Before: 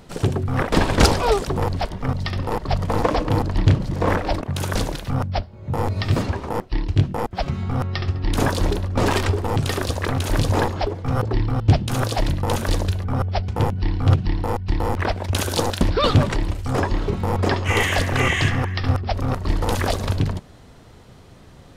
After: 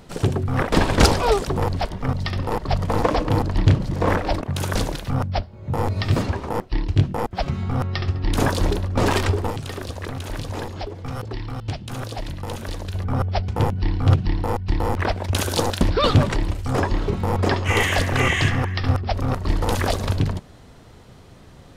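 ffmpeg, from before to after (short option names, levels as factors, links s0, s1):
-filter_complex "[0:a]asettb=1/sr,asplit=3[s0][s1][s2];[s0]atrim=end=9.504[s3];[s1]atrim=start=9.5:end=12.94,asetpts=PTS-STARTPTS,afade=t=in:d=0.004:c=qsin,afade=t=out:st=3.436:d=0.004:c=qsin,acrossover=split=650|2100|4200[s4][s5][s6][s7];[s4]acompressor=threshold=0.0316:ratio=3[s8];[s5]acompressor=threshold=0.00891:ratio=3[s9];[s6]acompressor=threshold=0.00708:ratio=3[s10];[s7]acompressor=threshold=0.00501:ratio=3[s11];[s8][s9][s10][s11]amix=inputs=4:normalize=0[s12];[s2]atrim=start=12.936[s13];[s3][s12]acrossfade=d=0.004:c1=hsin:c2=qsin[s14];[s14][s13]acrossfade=d=0.004:c1=qsin:c2=hsin"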